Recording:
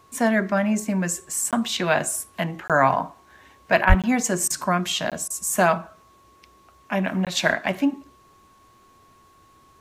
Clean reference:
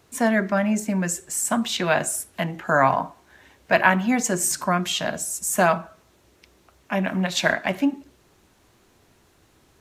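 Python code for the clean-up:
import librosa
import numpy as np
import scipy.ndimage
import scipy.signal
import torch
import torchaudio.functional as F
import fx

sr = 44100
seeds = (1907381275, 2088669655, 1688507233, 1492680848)

y = fx.notch(x, sr, hz=1100.0, q=30.0)
y = fx.fix_deplosive(y, sr, at_s=(3.88,))
y = fx.fix_interpolate(y, sr, at_s=(1.51, 2.68, 4.02, 5.1, 7.25), length_ms=17.0)
y = fx.fix_interpolate(y, sr, at_s=(3.85, 4.48, 5.28), length_ms=21.0)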